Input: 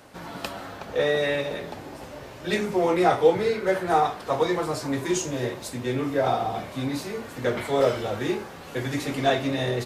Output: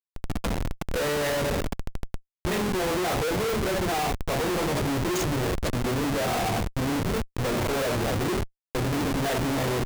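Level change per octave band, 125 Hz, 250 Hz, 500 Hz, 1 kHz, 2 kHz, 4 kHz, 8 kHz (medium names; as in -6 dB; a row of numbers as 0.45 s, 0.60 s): +4.0 dB, +0.5 dB, -4.0 dB, -3.0 dB, 0.0 dB, +1.5 dB, +3.5 dB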